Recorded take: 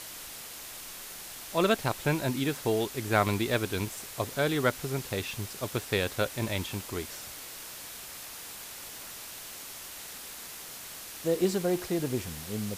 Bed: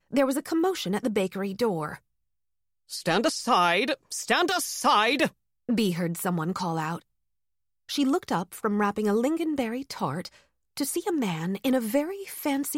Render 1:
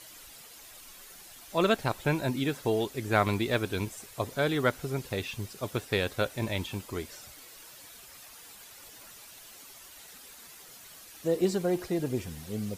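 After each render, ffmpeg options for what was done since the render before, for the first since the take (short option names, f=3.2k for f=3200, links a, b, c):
-af "afftdn=nr=10:nf=-44"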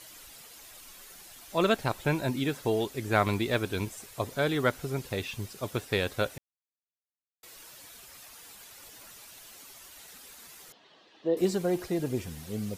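-filter_complex "[0:a]asettb=1/sr,asplit=3[a][b][c];[a]atrim=end=10.724[d];[b]atrim=start=10.72:end=11.37,asetpts=PTS-STARTPTS,afade=t=in:d=0.004:c=qsin,afade=t=out:st=0.646:d=0.004:c=qsin,highpass=240,equalizer=f=360:t=q:w=4:g=4,equalizer=f=1.4k:t=q:w=4:g=-9,equalizer=f=2.3k:t=q:w=4:g=-10,lowpass=f=3.6k:w=0.5412,lowpass=f=3.6k:w=1.3066[e];[c]atrim=start=11.366[f];[d][e]acrossfade=d=0.004:c1=hsin:c2=qsin[g];[g][f]acrossfade=d=0.004:c1=qsin:c2=hsin,asplit=3[h][i][j];[h]atrim=end=6.38,asetpts=PTS-STARTPTS,afade=t=out:st=6.376:d=0.004:c=hsin[k];[i]atrim=start=6.38:end=7.43,asetpts=PTS-STARTPTS,volume=0[l];[j]atrim=start=7.43,asetpts=PTS-STARTPTS,afade=t=in:d=0.004:c=hsin[m];[k][l][m]concat=n=3:v=0:a=1"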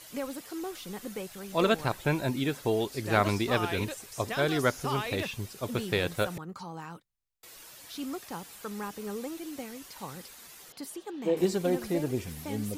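-filter_complex "[1:a]volume=-12.5dB[a];[0:a][a]amix=inputs=2:normalize=0"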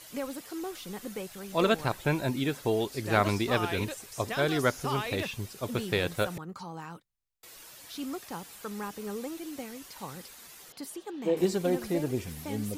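-af anull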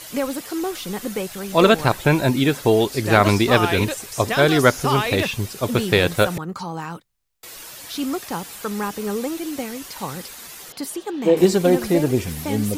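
-af "volume=11.5dB,alimiter=limit=-2dB:level=0:latency=1"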